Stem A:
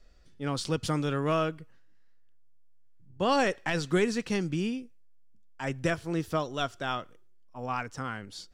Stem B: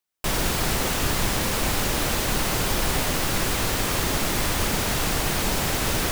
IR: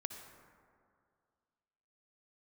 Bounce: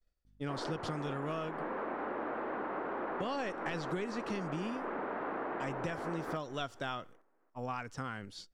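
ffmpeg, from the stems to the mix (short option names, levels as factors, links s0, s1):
-filter_complex "[0:a]acrossover=split=5400[s0][s1];[s1]acompressor=threshold=0.00251:ratio=4:attack=1:release=60[s2];[s0][s2]amix=inputs=2:normalize=0,agate=range=0.0224:threshold=0.00794:ratio=3:detection=peak,volume=0.841[s3];[1:a]highpass=f=270:w=0.5412,highpass=f=270:w=1.3066,aeval=exprs='val(0)+0.00112*(sin(2*PI*50*n/s)+sin(2*PI*2*50*n/s)/2+sin(2*PI*3*50*n/s)/3+sin(2*PI*4*50*n/s)/4+sin(2*PI*5*50*n/s)/5)':c=same,lowpass=f=1500:w=0.5412,lowpass=f=1500:w=1.3066,adelay=250,volume=0.562,asplit=2[s4][s5];[s5]volume=0.15,aecho=0:1:283|566|849|1132|1415:1|0.37|0.137|0.0507|0.0187[s6];[s3][s4][s6]amix=inputs=3:normalize=0,acompressor=threshold=0.02:ratio=6"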